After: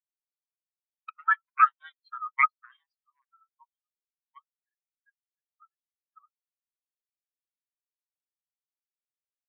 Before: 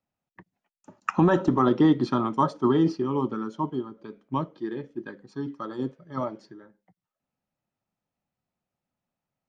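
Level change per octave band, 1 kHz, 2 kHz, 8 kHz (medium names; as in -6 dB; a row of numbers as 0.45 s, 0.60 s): +0.5 dB, +8.0 dB, no reading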